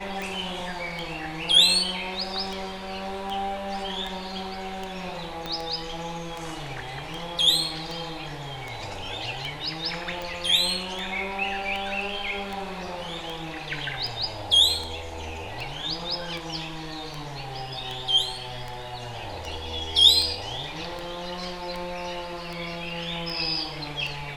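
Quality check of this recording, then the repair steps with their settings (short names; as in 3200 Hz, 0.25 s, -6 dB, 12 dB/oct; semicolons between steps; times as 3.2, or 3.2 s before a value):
tick 78 rpm
5.46 pop -16 dBFS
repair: de-click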